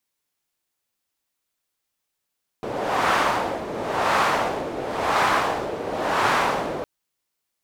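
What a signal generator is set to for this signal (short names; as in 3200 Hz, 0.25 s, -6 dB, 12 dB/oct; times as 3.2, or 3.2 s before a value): wind-like swept noise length 4.21 s, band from 480 Hz, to 1100 Hz, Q 1.4, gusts 4, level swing 10.5 dB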